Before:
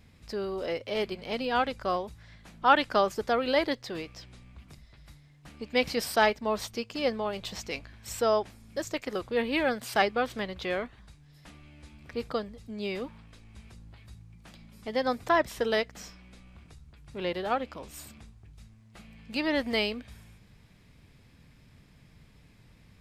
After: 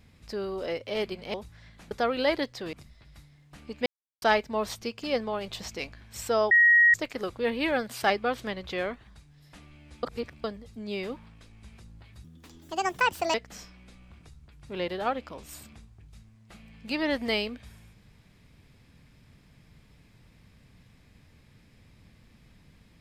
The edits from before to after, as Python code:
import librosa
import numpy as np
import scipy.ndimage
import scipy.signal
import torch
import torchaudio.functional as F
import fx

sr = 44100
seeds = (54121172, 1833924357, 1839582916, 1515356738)

y = fx.edit(x, sr, fx.cut(start_s=1.34, length_s=0.66),
    fx.cut(start_s=2.57, length_s=0.63),
    fx.cut(start_s=4.02, length_s=0.63),
    fx.silence(start_s=5.78, length_s=0.36),
    fx.bleep(start_s=8.43, length_s=0.43, hz=1890.0, db=-15.0),
    fx.reverse_span(start_s=11.95, length_s=0.41),
    fx.speed_span(start_s=14.16, length_s=1.63, speed=1.48), tone=tone)